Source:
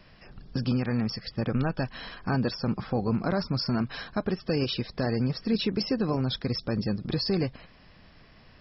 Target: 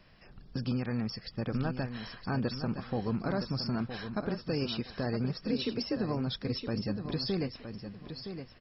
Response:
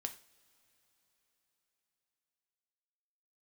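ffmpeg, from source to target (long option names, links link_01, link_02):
-filter_complex "[0:a]asettb=1/sr,asplit=3[link_01][link_02][link_03];[link_01]atrim=end=5.514[link_04];[link_02]atrim=start=5.51:end=5.97,asetpts=PTS-STARTPTS,afade=type=in:duration=0.004:curve=qsin,afade=type=out:start_time=0.456:duration=0.004:curve=qsin,afreqshift=34[link_05];[link_03]atrim=start=5.966[link_06];[link_04][link_05]acrossfade=duration=0.004:curve1=hsin:curve2=qsin[link_07];[link_07][link_06]acrossfade=duration=0.004:curve1=qsin:curve2=hsin,aecho=1:1:966|1932|2898:0.355|0.0852|0.0204,volume=-5.5dB"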